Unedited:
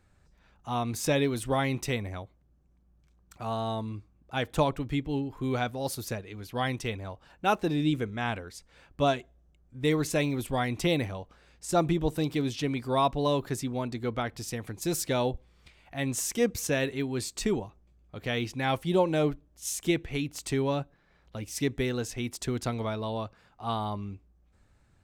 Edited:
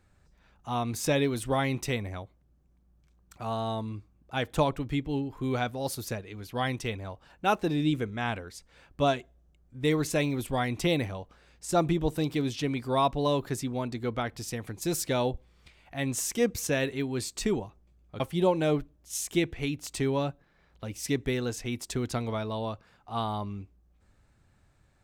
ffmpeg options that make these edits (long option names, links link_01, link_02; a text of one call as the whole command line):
ffmpeg -i in.wav -filter_complex "[0:a]asplit=2[link_01][link_02];[link_01]atrim=end=18.202[link_03];[link_02]atrim=start=18.718[link_04];[link_03][link_04]acrossfade=duration=0.004:curve1=hsin:curve2=hsin" out.wav